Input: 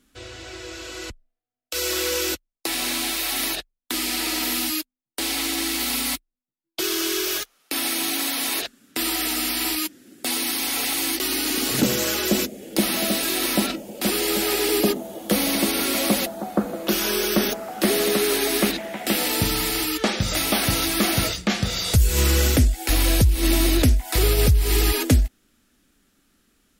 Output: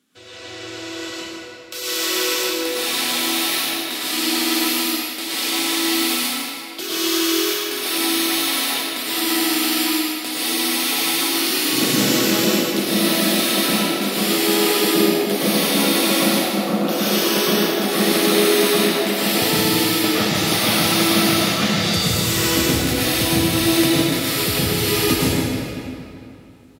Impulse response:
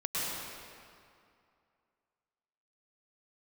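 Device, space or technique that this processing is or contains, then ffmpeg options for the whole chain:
PA in a hall: -filter_complex "[0:a]asettb=1/sr,asplit=3[a][b][c];[a]atrim=end=23.864[d];[b]atrim=start=23.86:end=24.37,asetpts=PTS-STARTPTS,afade=t=in:d=0.004:c=qsin,afade=t=out:st=0.506:d=0.004:c=qsin,highpass=f=990:w=0.5412,highpass=f=990:w=1.3066[e];[c]atrim=start=24.366[f];[d][e]acrossfade=d=0.004:c1=hsin:c2=qsin[g];[g][f]acrossfade=d=0.004:c1=qsin:c2=hsin,highpass=f=110:w=0.5412,highpass=f=110:w=1.3066,equalizer=f=3.6k:t=o:w=0.75:g=3,aecho=1:1:154:0.398,asplit=2[h][i];[i]adelay=383,lowpass=f=2.6k:p=1,volume=-14.5dB,asplit=2[j][k];[k]adelay=383,lowpass=f=2.6k:p=1,volume=0.41,asplit=2[l][m];[m]adelay=383,lowpass=f=2.6k:p=1,volume=0.41,asplit=2[n][o];[o]adelay=383,lowpass=f=2.6k:p=1,volume=0.41[p];[h][j][l][n][p]amix=inputs=5:normalize=0[q];[1:a]atrim=start_sample=2205[r];[q][r]afir=irnorm=-1:irlink=0,volume=-3dB"

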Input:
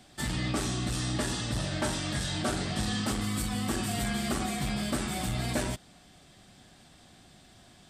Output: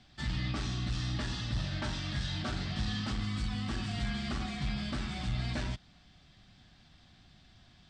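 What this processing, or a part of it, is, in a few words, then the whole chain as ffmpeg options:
smiley-face EQ: -af "lowpass=f=5.1k:w=0.5412,lowpass=f=5.1k:w=1.3066,lowshelf=f=110:g=7.5,equalizer=f=460:t=o:w=1.6:g=-8.5,highshelf=f=8.2k:g=6.5,volume=-4dB"

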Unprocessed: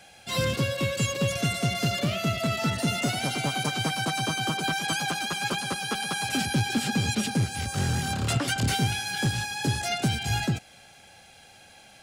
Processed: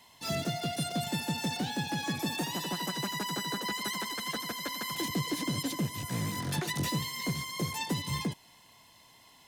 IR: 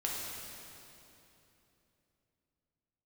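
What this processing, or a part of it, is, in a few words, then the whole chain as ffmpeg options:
nightcore: -af "asetrate=56007,aresample=44100,volume=-6.5dB"

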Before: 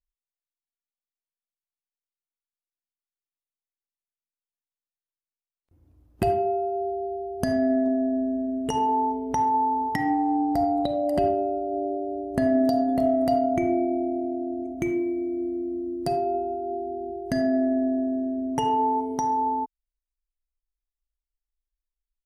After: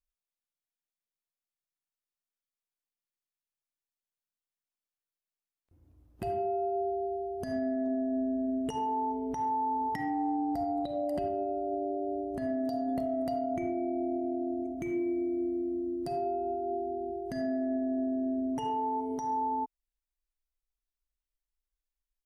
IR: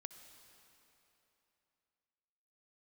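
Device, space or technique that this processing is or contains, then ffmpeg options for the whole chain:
stacked limiters: -af "alimiter=limit=-15dB:level=0:latency=1:release=404,alimiter=limit=-21.5dB:level=0:latency=1:release=161,volume=-3dB"

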